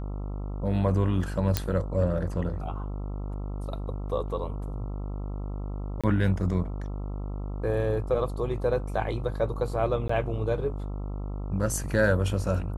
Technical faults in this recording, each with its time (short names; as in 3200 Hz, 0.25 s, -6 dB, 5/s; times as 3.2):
buzz 50 Hz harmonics 27 -33 dBFS
1.57 pop -7 dBFS
6.01–6.04 gap 26 ms
10.08–10.09 gap 14 ms